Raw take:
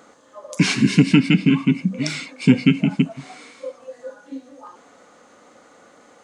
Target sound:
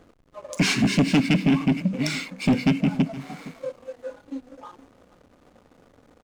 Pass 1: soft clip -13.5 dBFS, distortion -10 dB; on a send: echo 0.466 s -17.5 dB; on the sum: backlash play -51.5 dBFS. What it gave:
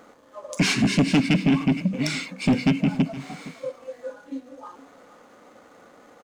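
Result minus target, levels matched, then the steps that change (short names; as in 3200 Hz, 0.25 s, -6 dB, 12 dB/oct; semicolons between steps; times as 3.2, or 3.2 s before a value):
backlash: distortion -10 dB
change: backlash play -40.5 dBFS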